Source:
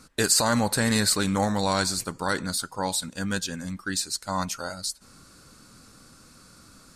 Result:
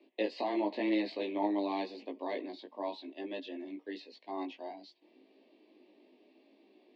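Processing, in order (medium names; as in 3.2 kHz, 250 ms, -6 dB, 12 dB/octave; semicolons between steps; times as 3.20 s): chorus 0.92 Hz, delay 17.5 ms, depth 2.4 ms; mistuned SSB +100 Hz 150–3200 Hz; Butterworth band-stop 1.4 kHz, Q 1.1; trim -3.5 dB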